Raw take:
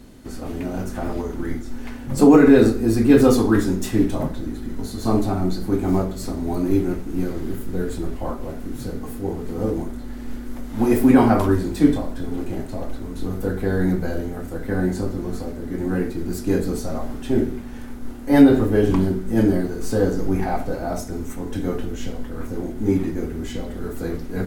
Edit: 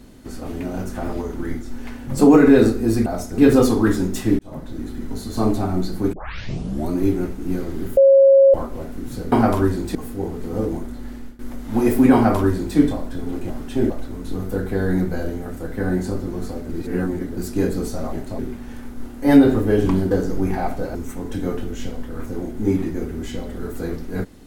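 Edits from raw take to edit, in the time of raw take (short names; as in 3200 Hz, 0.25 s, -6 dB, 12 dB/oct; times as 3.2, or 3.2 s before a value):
4.07–4.54 fade in
5.81 tape start 0.77 s
7.65–8.22 bleep 545 Hz -7.5 dBFS
10.17–10.44 fade out, to -21 dB
11.19–11.82 copy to 9
12.55–12.81 swap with 17.04–17.44
15.6–16.28 reverse
19.16–20 cut
20.84–21.16 move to 3.06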